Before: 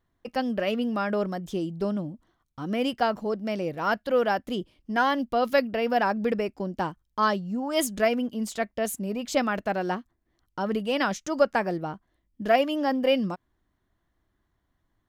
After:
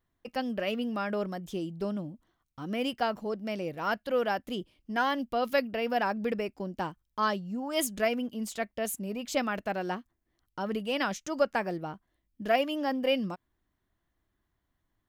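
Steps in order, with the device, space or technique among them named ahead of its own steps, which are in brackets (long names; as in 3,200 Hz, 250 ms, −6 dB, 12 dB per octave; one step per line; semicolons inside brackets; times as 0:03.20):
presence and air boost (parametric band 2,600 Hz +3 dB; high-shelf EQ 9,700 Hz +6.5 dB)
level −5 dB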